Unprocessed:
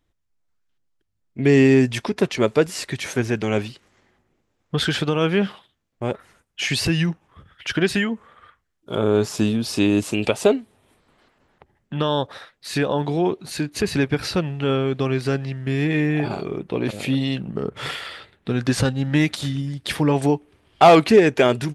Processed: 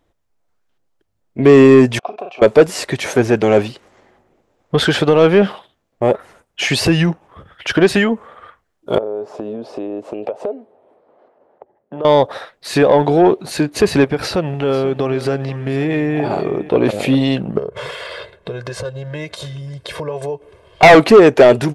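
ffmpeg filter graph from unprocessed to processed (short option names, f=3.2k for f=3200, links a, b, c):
-filter_complex "[0:a]asettb=1/sr,asplit=3[a][b][c];[a]atrim=end=1.994[d];[b]atrim=start=1.99:end=2.42,asetpts=PTS-STARTPTS,afade=t=in:d=0.004:c=qsin,afade=t=out:st=0.426:d=0.004:c=qsin,asplit=2[e][f];[f]adelay=39,volume=-7.5dB[g];[e][g]amix=inputs=2:normalize=0,atrim=end_sample=18963,acompressor=threshold=-19dB:ratio=5:attack=3.2:release=140:knee=1:detection=peak,asplit=3[h][i][j];[h]bandpass=f=730:t=q:w=8,volume=0dB[k];[i]bandpass=f=1.09k:t=q:w=8,volume=-6dB[l];[j]bandpass=f=2.44k:t=q:w=8,volume=-9dB[m];[k][l][m]amix=inputs=3:normalize=0[n];[c]atrim=start=2.416[o];[d][n]acrossfade=d=0.004:c1=hsin:c2=qsin[p];[p][o]acrossfade=d=0.004:c1=qsin:c2=hsin,asettb=1/sr,asplit=3[q][r][s];[q]atrim=end=8.984[t];[r]atrim=start=8.98:end=12.05,asetpts=PTS-STARTPTS,afade=t=in:d=0.004:c=qsin,afade=t=out:st=3.066:d=0.004:c=qsin,bandpass=f=540:t=q:w=1.4,acompressor=threshold=-32dB:ratio=8:attack=3.2:release=140:knee=1:detection=peak[u];[s]atrim=start=12.046[v];[t][u]acrossfade=d=0.004:c1=hsin:c2=qsin[w];[w][v]acrossfade=d=0.004:c1=qsin:c2=hsin,asettb=1/sr,asplit=3[x][y][z];[x]atrim=end=14.044[aa];[y]atrim=start=14.04:end=16.69,asetpts=PTS-STARTPTS,afade=t=in:d=0.004:c=qsin,afade=t=out:st=2.646:d=0.004:c=qsin,acompressor=threshold=-25dB:ratio=2.5:attack=3.2:release=140:knee=1:detection=peak,aecho=1:1:492:0.168,atrim=end_sample=116865[ab];[z]atrim=start=16.686[ac];[aa][ab]acrossfade=d=0.004:c1=hsin:c2=qsin[ad];[ad][ac]acrossfade=d=0.004:c1=qsin:c2=hsin,asettb=1/sr,asplit=3[ae][af][ag];[ae]atrim=end=17.584[ah];[af]atrim=start=17.58:end=20.83,asetpts=PTS-STARTPTS,afade=t=in:d=0.004:c=qsin,afade=t=out:st=3.246:d=0.004:c=qsin,lowpass=11k,aecho=1:1:1.9:0.9,atrim=end_sample=143325,acompressor=threshold=-33dB:ratio=6:attack=3.2:release=140:knee=1:detection=peak[ai];[ag]atrim=start=20.826[aj];[ah][ai]acrossfade=d=0.004:c1=hsin:c2=qsin[ak];[ak][aj]acrossfade=d=0.004:c1=qsin:c2=hsin,equalizer=f=610:t=o:w=1.9:g=10.5,acontrast=36,volume=-1dB"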